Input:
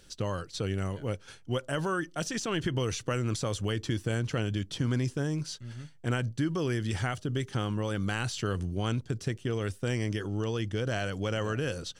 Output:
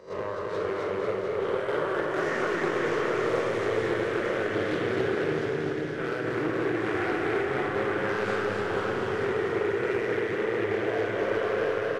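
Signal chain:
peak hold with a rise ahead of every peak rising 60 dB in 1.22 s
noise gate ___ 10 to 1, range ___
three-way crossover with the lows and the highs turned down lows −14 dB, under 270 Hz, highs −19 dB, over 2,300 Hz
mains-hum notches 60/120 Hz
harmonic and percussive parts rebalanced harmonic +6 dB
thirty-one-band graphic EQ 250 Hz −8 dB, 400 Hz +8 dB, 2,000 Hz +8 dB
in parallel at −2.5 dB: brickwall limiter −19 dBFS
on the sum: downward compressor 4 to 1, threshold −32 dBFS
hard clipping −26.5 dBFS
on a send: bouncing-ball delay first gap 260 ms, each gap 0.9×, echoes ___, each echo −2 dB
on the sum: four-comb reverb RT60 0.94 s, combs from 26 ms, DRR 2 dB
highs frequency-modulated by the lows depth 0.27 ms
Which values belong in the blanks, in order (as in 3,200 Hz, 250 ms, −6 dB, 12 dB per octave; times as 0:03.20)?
−29 dBFS, −22 dB, 9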